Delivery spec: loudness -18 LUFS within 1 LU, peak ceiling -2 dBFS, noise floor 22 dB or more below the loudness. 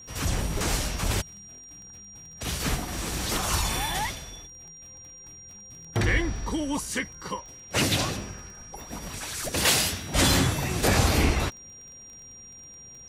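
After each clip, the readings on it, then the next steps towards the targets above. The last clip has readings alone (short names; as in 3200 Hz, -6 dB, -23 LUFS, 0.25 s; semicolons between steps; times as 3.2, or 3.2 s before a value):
ticks 20/s; steady tone 5700 Hz; tone level -44 dBFS; loudness -26.5 LUFS; peak -9.5 dBFS; loudness target -18.0 LUFS
-> de-click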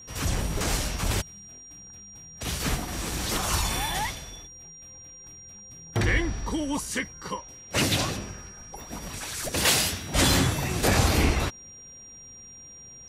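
ticks 0/s; steady tone 5700 Hz; tone level -44 dBFS
-> notch 5700 Hz, Q 30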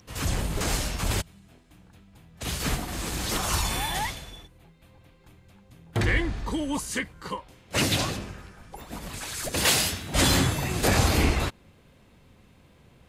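steady tone none; loudness -26.5 LUFS; peak -9.5 dBFS; loudness target -18.0 LUFS
-> gain +8.5 dB; limiter -2 dBFS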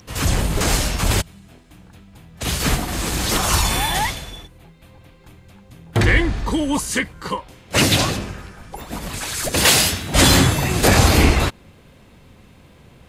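loudness -18.0 LUFS; peak -2.0 dBFS; noise floor -49 dBFS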